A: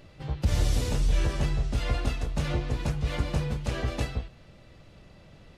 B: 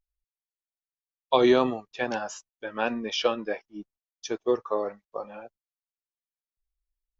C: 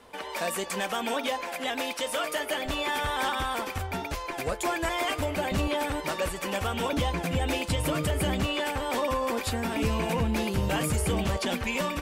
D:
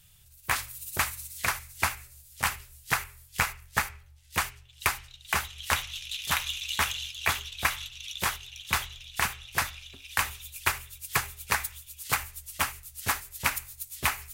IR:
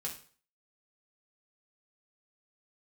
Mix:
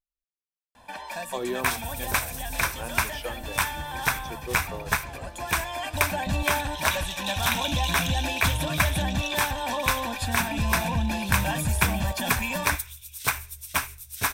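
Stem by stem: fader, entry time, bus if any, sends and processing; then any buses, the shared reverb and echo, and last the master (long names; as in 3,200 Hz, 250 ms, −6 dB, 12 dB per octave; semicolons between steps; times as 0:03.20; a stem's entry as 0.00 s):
−14.0 dB, 1.40 s, no send, no processing
−11.0 dB, 0.00 s, no send, no processing
−2.5 dB, 0.75 s, no send, comb filter 1.2 ms, depth 87%; automatic ducking −7 dB, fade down 0.35 s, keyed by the second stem
+1.5 dB, 1.15 s, no send, EQ curve with evenly spaced ripples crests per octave 1.6, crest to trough 6 dB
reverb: not used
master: no processing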